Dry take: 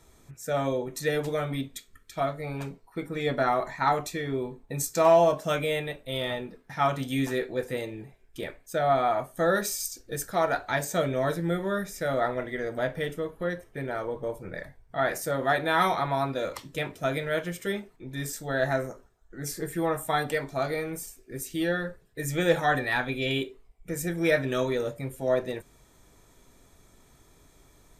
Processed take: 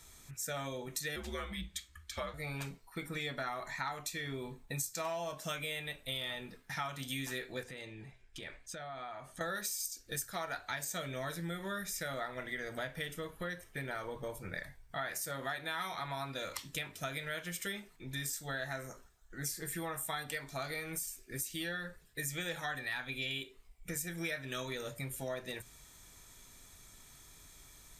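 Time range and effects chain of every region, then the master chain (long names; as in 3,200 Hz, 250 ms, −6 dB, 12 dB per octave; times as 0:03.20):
0:01.16–0:02.34: high-shelf EQ 8,800 Hz −11 dB + frequency shifter −82 Hz
0:07.63–0:09.41: downward compressor 5 to 1, threshold −39 dBFS + high-frequency loss of the air 69 metres
whole clip: guitar amp tone stack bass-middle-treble 5-5-5; downward compressor 6 to 1, threshold −49 dBFS; mains-hum notches 60/120 Hz; level +12.5 dB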